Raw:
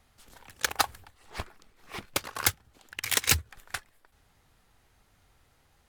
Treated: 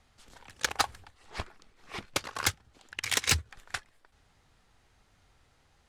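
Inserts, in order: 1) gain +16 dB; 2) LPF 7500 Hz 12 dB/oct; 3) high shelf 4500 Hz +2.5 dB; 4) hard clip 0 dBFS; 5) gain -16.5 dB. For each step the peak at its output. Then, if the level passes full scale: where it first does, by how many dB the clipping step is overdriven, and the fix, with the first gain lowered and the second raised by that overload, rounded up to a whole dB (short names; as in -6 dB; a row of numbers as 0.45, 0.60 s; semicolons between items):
+3.0, +3.5, +5.0, 0.0, -16.5 dBFS; step 1, 5.0 dB; step 1 +11 dB, step 5 -11.5 dB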